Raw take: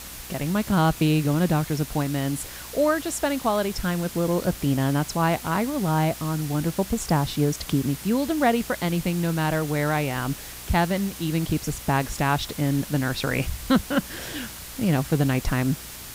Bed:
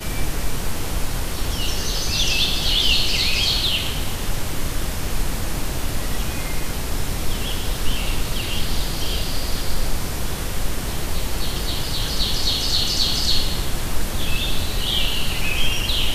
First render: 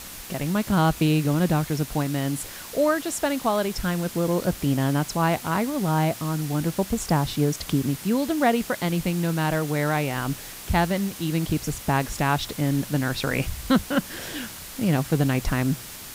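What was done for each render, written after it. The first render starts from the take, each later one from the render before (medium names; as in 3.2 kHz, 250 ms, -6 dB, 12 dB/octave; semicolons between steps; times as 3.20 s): de-hum 60 Hz, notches 2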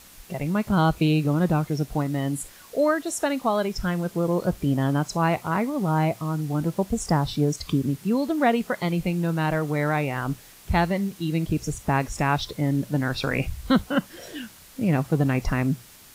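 noise print and reduce 10 dB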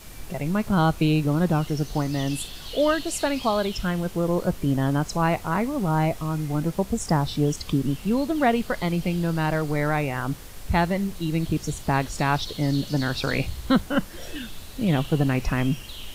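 add bed -18 dB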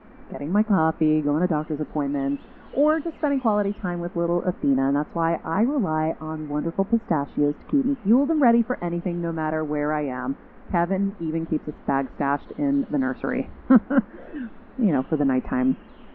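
low-pass 1.7 kHz 24 dB/octave; resonant low shelf 170 Hz -8.5 dB, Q 3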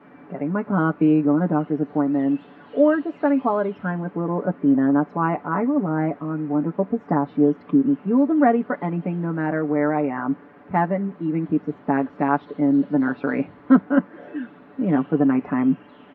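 high-pass 99 Hz 24 dB/octave; comb 6.9 ms, depth 68%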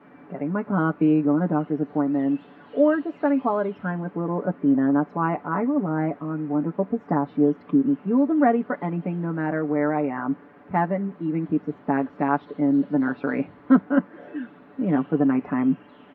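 trim -2 dB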